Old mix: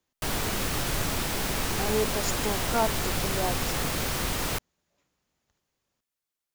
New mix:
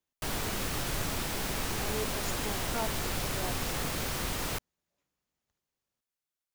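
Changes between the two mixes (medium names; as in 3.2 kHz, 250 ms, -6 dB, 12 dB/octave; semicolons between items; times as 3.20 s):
speech -10.0 dB; background -4.5 dB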